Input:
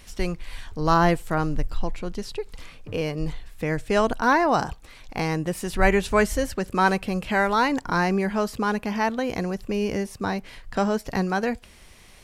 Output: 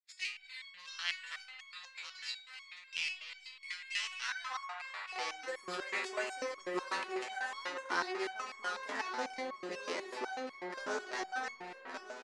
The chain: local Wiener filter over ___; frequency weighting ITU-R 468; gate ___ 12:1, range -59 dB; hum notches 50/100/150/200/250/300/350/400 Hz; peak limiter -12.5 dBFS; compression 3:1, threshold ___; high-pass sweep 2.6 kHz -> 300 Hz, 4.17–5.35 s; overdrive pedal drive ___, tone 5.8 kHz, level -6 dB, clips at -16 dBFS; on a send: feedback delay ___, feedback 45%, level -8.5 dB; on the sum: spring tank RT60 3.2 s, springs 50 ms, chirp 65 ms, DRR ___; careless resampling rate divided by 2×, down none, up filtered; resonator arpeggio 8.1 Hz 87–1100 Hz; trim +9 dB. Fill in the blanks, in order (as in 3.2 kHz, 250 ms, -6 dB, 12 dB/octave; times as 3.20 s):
15 samples, -52 dBFS, -39 dBFS, 8 dB, 1170 ms, 5 dB